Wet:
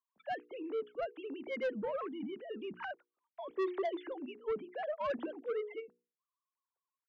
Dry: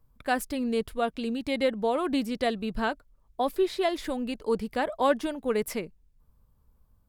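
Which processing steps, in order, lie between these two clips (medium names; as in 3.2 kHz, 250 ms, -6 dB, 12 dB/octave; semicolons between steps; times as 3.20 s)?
formants replaced by sine waves; hum notches 60/120/180/240/300/360/420/480 Hz; 1.99–3.58 s: compressor with a negative ratio -35 dBFS, ratio -1; saturation -24.5 dBFS, distortion -6 dB; trim -5.5 dB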